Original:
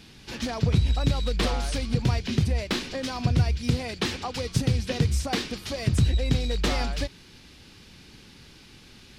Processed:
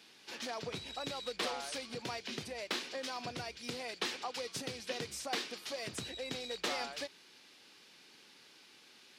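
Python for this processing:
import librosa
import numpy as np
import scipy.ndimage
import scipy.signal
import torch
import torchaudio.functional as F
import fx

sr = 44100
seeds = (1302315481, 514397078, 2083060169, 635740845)

y = scipy.signal.sosfilt(scipy.signal.butter(2, 430.0, 'highpass', fs=sr, output='sos'), x)
y = y * librosa.db_to_amplitude(-7.0)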